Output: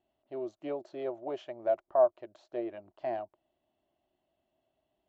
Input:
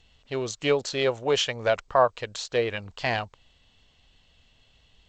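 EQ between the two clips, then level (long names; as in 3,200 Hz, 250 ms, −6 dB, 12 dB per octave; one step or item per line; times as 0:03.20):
pair of resonant band-passes 470 Hz, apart 0.83 octaves
0.0 dB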